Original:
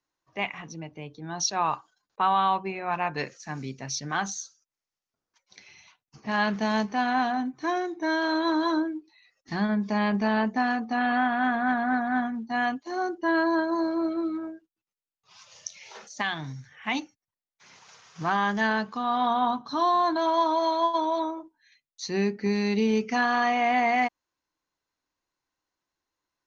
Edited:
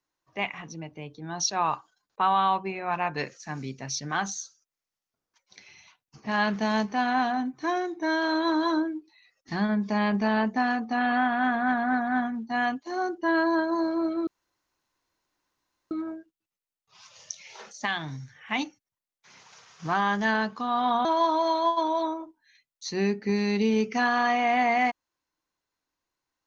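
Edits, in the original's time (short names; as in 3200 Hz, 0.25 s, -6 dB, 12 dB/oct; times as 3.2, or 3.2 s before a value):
14.27 insert room tone 1.64 s
19.41–20.22 cut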